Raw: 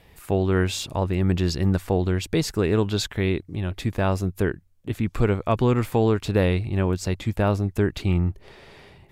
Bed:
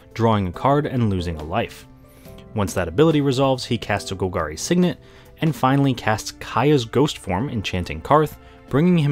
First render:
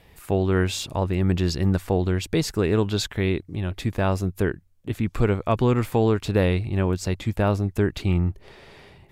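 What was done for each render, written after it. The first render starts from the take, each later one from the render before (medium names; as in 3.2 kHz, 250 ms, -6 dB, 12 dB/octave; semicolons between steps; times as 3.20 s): no audible change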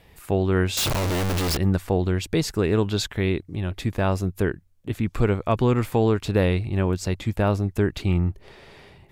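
0.77–1.57 s: one-bit comparator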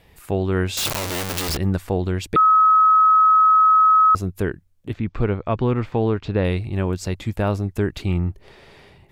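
0.85–1.49 s: tilt EQ +2 dB/octave; 2.36–4.15 s: bleep 1.28 kHz -10.5 dBFS; 4.93–6.45 s: distance through air 180 m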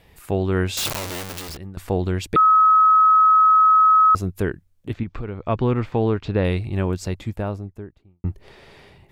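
0.68–1.77 s: fade out linear, to -20.5 dB; 5.03–5.48 s: compression 4:1, threshold -26 dBFS; 6.80–8.24 s: studio fade out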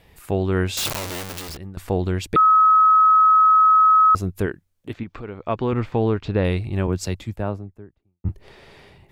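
4.46–5.73 s: bass shelf 140 Hz -11 dB; 6.87–8.29 s: three bands expanded up and down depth 70%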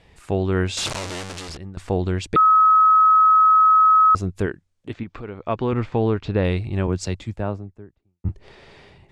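low-pass 8.6 kHz 24 dB/octave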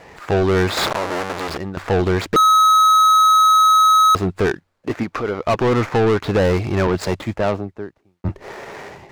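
median filter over 15 samples; overdrive pedal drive 26 dB, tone 4.8 kHz, clips at -8.5 dBFS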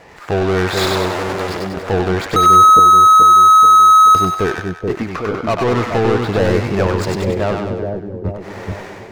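two-band feedback delay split 660 Hz, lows 431 ms, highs 97 ms, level -3 dB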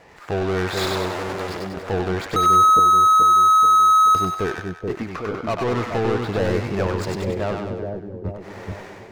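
trim -6.5 dB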